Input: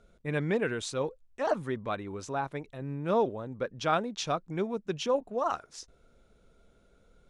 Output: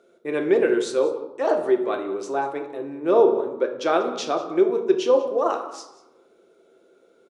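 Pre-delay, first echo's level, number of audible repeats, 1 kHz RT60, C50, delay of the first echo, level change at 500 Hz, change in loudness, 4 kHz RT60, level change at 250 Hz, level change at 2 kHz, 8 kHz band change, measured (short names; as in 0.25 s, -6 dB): 3 ms, -18.5 dB, 1, 0.95 s, 8.5 dB, 0.189 s, +11.5 dB, +9.5 dB, 0.55 s, +9.0 dB, +4.5 dB, +3.0 dB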